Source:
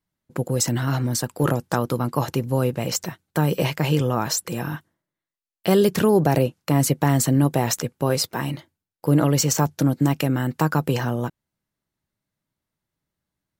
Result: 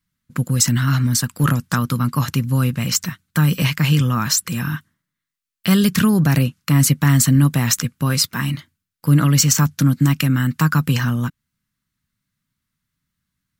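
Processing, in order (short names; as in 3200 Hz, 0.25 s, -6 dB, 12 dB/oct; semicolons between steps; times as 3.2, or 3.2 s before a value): band shelf 540 Hz -15.5 dB; gain +6.5 dB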